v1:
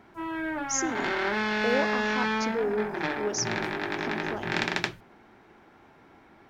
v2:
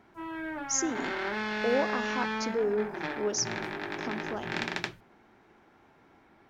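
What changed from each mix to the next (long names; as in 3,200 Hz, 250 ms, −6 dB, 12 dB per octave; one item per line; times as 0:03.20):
background −5.0 dB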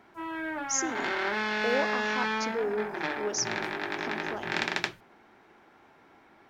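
background +4.0 dB
master: add low-shelf EQ 240 Hz −8.5 dB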